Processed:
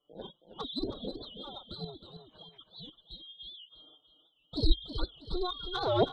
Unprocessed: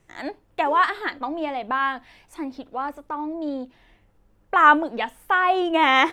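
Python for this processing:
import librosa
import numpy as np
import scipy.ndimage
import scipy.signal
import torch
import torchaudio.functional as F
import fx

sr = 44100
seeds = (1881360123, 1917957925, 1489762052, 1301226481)

y = fx.band_shuffle(x, sr, order='2413')
y = scipy.signal.sosfilt(scipy.signal.butter(2, 1500.0, 'lowpass', fs=sr, output='sos'), y)
y = fx.spec_gate(y, sr, threshold_db=-20, keep='strong')
y = fx.cheby_harmonics(y, sr, harmonics=(3,), levels_db=(-17,), full_scale_db=-4.0)
y = fx.tremolo_shape(y, sr, shape='saw_up', hz=3.8, depth_pct=60)
y = fx.env_flanger(y, sr, rest_ms=6.8, full_db=-21.0)
y = fx.echo_feedback(y, sr, ms=322, feedback_pct=34, wet_db=-9.5)
y = fx.record_warp(y, sr, rpm=78.0, depth_cents=160.0)
y = y * librosa.db_to_amplitude(5.0)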